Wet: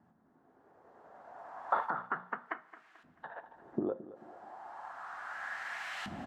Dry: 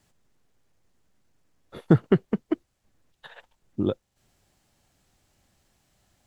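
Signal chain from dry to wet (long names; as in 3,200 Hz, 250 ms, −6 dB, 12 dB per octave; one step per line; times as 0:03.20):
camcorder AGC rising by 11 dB per second
high-pass filter 48 Hz
flat-topped bell 1,100 Hz +14 dB
mains-hum notches 60/120/180/240 Hz
brickwall limiter −11 dBFS, peak gain reduction 14.5 dB
downward compressor 10 to 1, threshold −33 dBFS, peak gain reduction 15.5 dB
auto-filter band-pass saw up 0.33 Hz 210–2,800 Hz
repeating echo 219 ms, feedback 40%, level −16 dB
coupled-rooms reverb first 0.24 s, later 1.9 s, from −19 dB, DRR 9.5 dB
level +9.5 dB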